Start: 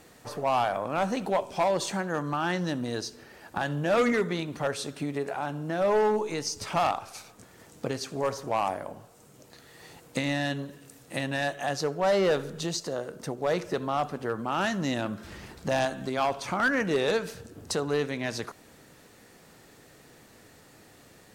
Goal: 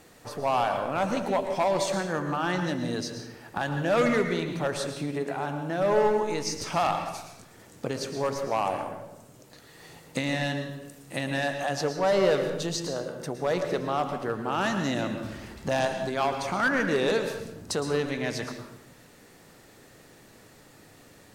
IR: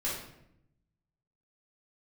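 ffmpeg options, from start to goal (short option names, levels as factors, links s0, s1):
-filter_complex "[0:a]asplit=2[s0][s1];[1:a]atrim=start_sample=2205,adelay=111[s2];[s1][s2]afir=irnorm=-1:irlink=0,volume=0.266[s3];[s0][s3]amix=inputs=2:normalize=0"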